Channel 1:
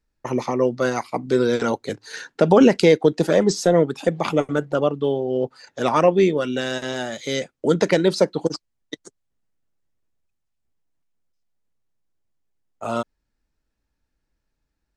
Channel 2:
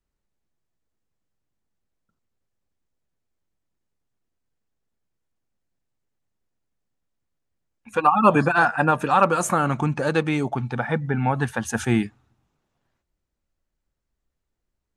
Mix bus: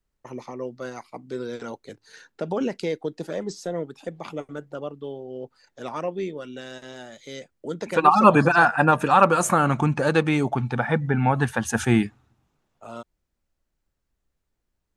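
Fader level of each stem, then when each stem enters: −13.0, +1.5 decibels; 0.00, 0.00 seconds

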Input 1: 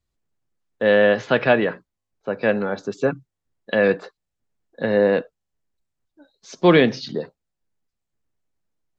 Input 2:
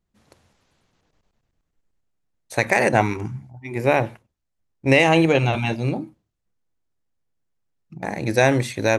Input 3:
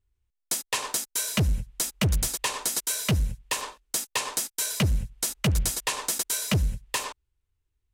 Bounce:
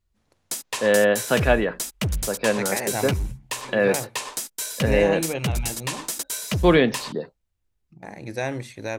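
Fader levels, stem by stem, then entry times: −2.5, −11.0, −1.5 decibels; 0.00, 0.00, 0.00 seconds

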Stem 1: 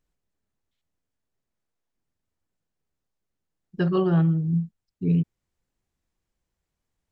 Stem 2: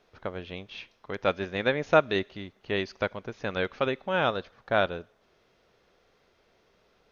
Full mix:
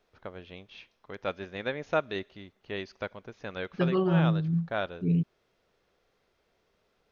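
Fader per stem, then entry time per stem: −4.0, −7.0 decibels; 0.00, 0.00 seconds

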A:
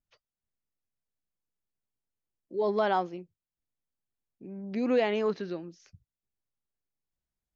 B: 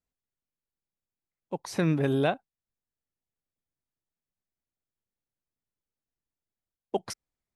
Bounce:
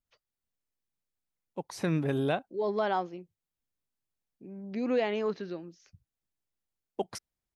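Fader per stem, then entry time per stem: −2.5, −3.5 decibels; 0.00, 0.05 seconds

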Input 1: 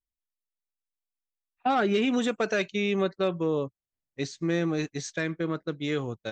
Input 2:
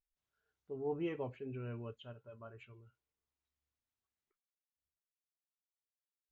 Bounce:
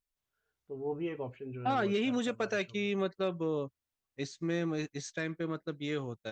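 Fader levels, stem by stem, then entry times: −6.0, +2.0 decibels; 0.00, 0.00 seconds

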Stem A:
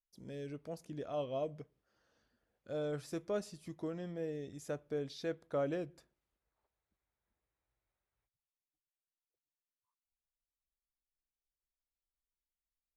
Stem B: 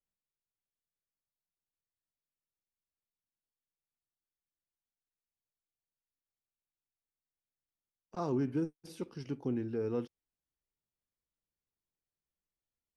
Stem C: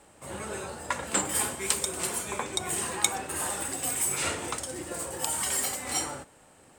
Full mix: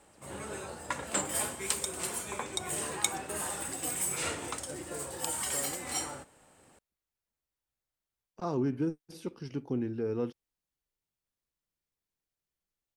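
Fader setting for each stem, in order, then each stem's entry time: −8.0, +2.0, −4.5 decibels; 0.00, 0.25, 0.00 seconds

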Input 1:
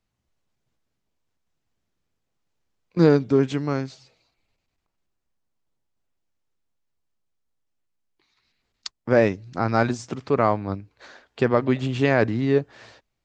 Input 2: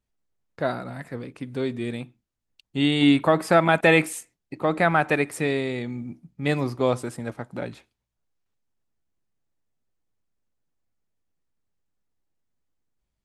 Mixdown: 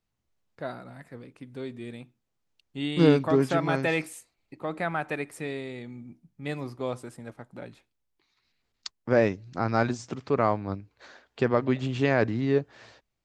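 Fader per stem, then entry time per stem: −4.0, −9.5 decibels; 0.00, 0.00 seconds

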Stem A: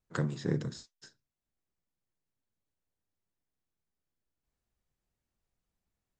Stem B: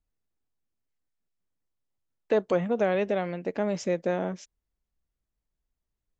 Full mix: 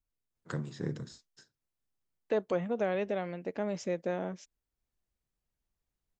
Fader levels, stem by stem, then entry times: −4.5, −6.0 decibels; 0.35, 0.00 seconds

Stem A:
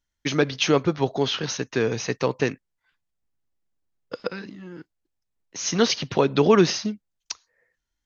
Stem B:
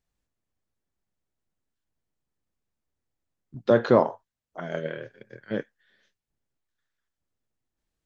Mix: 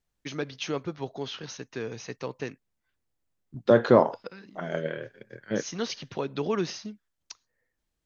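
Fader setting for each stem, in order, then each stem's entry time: −11.5, +0.5 decibels; 0.00, 0.00 seconds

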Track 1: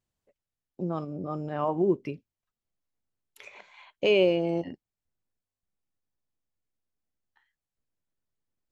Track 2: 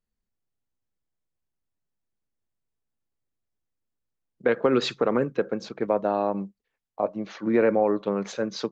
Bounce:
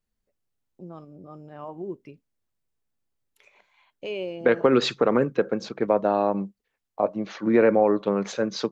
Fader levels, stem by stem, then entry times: −10.0, +2.5 decibels; 0.00, 0.00 seconds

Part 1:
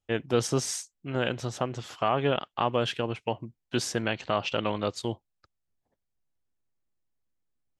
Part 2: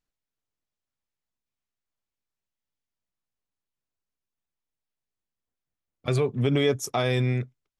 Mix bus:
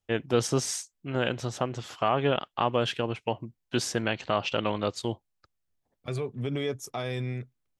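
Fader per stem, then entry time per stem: +0.5, −8.0 decibels; 0.00, 0.00 seconds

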